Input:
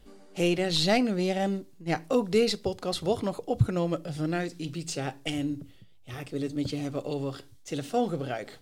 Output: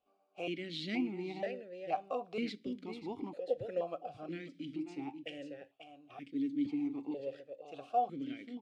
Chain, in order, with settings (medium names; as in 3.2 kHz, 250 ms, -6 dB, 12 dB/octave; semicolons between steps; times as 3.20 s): gate -43 dBFS, range -9 dB; delay 539 ms -9 dB; stepped vowel filter 2.1 Hz; trim +1 dB